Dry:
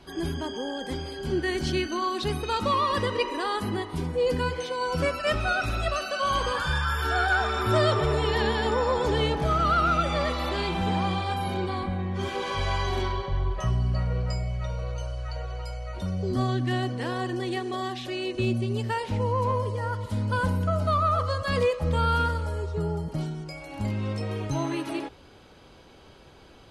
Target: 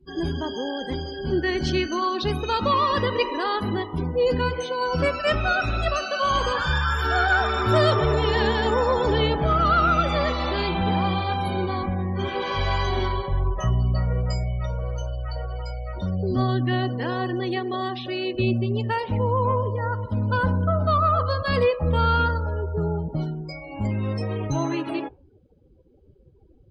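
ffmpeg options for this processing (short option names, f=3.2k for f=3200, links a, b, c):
-af "afftdn=nr=35:nf=-42,volume=3.5dB"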